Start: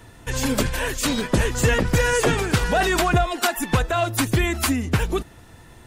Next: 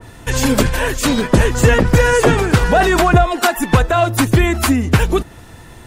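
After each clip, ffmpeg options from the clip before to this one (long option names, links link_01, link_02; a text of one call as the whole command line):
ffmpeg -i in.wav -af "adynamicequalizer=threshold=0.0158:dfrequency=1900:dqfactor=0.7:tfrequency=1900:tqfactor=0.7:attack=5:release=100:ratio=0.375:range=3:mode=cutabove:tftype=highshelf,volume=8dB" out.wav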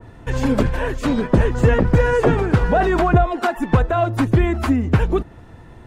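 ffmpeg -i in.wav -af "lowpass=frequency=1100:poles=1,volume=-2.5dB" out.wav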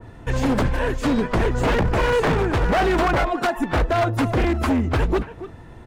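ffmpeg -i in.wav -filter_complex "[0:a]asplit=2[link_01][link_02];[link_02]adelay=280,highpass=300,lowpass=3400,asoftclip=type=hard:threshold=-13.5dB,volume=-13dB[link_03];[link_01][link_03]amix=inputs=2:normalize=0,aeval=exprs='0.211*(abs(mod(val(0)/0.211+3,4)-2)-1)':channel_layout=same" out.wav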